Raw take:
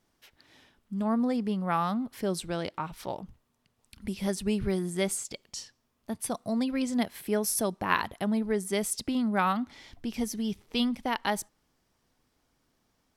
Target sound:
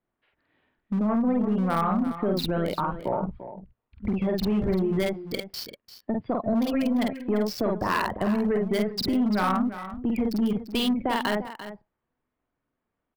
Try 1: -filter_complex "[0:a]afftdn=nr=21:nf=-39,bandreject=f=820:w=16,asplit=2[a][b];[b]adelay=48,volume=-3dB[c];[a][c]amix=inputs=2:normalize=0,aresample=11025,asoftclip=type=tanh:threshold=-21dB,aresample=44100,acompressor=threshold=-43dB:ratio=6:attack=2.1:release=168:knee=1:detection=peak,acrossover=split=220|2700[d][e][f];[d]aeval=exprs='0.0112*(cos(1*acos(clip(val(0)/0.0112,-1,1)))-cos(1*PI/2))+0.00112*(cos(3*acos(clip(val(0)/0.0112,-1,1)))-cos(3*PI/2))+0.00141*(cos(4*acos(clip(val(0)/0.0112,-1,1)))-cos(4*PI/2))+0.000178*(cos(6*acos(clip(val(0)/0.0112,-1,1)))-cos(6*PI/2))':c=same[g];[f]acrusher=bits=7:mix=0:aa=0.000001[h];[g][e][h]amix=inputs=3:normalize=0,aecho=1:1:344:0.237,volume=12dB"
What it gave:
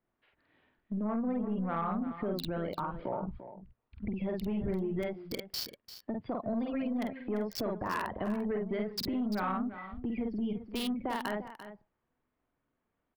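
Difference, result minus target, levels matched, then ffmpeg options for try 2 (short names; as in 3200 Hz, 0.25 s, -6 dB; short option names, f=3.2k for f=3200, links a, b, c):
compressor: peak gain reduction +8.5 dB
-filter_complex "[0:a]afftdn=nr=21:nf=-39,bandreject=f=820:w=16,asplit=2[a][b];[b]adelay=48,volume=-3dB[c];[a][c]amix=inputs=2:normalize=0,aresample=11025,asoftclip=type=tanh:threshold=-21dB,aresample=44100,acompressor=threshold=-33dB:ratio=6:attack=2.1:release=168:knee=1:detection=peak,acrossover=split=220|2700[d][e][f];[d]aeval=exprs='0.0112*(cos(1*acos(clip(val(0)/0.0112,-1,1)))-cos(1*PI/2))+0.00112*(cos(3*acos(clip(val(0)/0.0112,-1,1)))-cos(3*PI/2))+0.00141*(cos(4*acos(clip(val(0)/0.0112,-1,1)))-cos(4*PI/2))+0.000178*(cos(6*acos(clip(val(0)/0.0112,-1,1)))-cos(6*PI/2))':c=same[g];[f]acrusher=bits=7:mix=0:aa=0.000001[h];[g][e][h]amix=inputs=3:normalize=0,aecho=1:1:344:0.237,volume=12dB"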